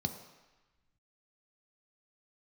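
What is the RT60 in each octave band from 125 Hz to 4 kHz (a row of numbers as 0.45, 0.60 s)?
1.1, 1.0, 1.0, 1.2, 1.3, 1.1 s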